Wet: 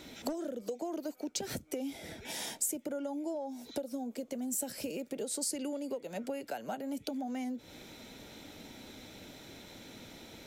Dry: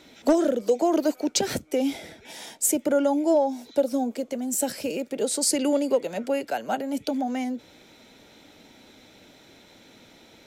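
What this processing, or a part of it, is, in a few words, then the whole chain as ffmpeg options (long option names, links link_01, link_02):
ASMR close-microphone chain: -af "lowshelf=frequency=200:gain=6.5,acompressor=threshold=-35dB:ratio=10,highshelf=frequency=8500:gain=7.5"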